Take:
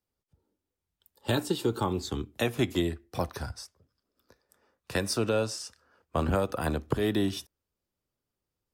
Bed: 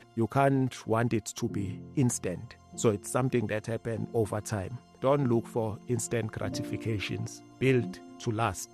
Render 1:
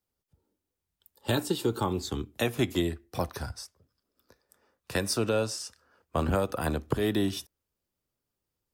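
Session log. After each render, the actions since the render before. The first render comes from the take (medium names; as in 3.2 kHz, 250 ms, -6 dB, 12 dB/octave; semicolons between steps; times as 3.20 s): treble shelf 9 kHz +4.5 dB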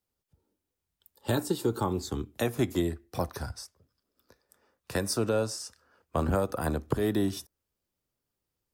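dynamic bell 2.9 kHz, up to -8 dB, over -51 dBFS, Q 1.4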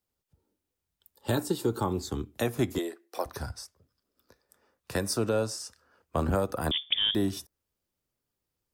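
2.78–3.26 s: high-pass 360 Hz 24 dB/octave; 6.71–7.15 s: frequency inversion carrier 3.5 kHz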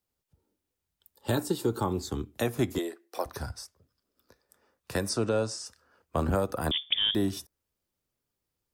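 5.09–5.66 s: low-pass 9 kHz 24 dB/octave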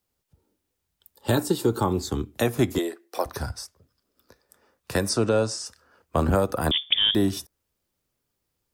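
trim +5.5 dB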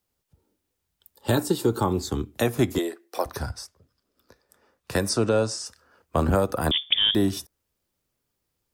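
3.39–4.93 s: treble shelf 8.2 kHz -4.5 dB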